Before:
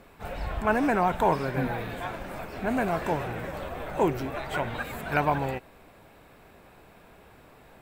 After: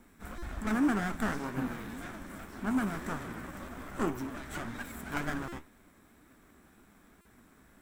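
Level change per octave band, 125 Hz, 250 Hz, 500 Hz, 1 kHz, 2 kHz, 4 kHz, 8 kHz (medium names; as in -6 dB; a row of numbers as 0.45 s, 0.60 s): -8.0 dB, -2.0 dB, -13.0 dB, -11.5 dB, -6.0 dB, -6.0 dB, +1.0 dB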